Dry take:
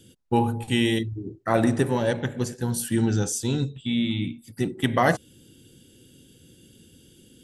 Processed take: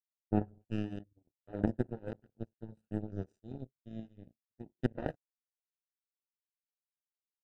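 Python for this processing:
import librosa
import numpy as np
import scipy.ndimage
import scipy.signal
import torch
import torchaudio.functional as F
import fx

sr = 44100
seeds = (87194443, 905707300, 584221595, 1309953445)

y = fx.pitch_glide(x, sr, semitones=-2.0, runs='ending unshifted')
y = fx.power_curve(y, sr, exponent=3.0)
y = np.convolve(y, np.full(40, 1.0 / 40))[:len(y)]
y = F.gain(torch.from_numpy(y), 5.5).numpy()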